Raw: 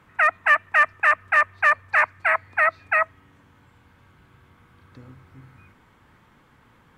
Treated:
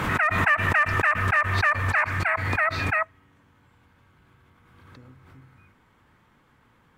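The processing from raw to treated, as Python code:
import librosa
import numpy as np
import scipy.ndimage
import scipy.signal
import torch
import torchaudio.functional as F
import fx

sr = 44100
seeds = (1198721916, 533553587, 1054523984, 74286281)

y = fx.pre_swell(x, sr, db_per_s=34.0)
y = y * librosa.db_to_amplitude(-4.5)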